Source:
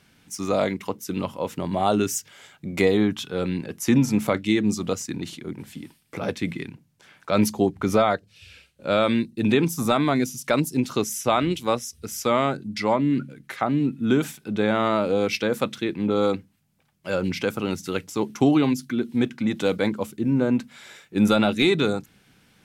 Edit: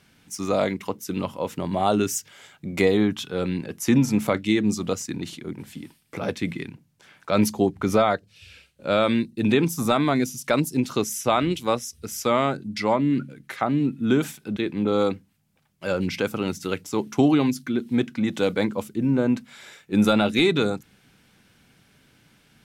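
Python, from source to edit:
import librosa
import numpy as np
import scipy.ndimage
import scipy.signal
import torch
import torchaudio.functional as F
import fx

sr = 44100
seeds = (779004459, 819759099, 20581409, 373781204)

y = fx.edit(x, sr, fx.cut(start_s=14.57, length_s=1.23), tone=tone)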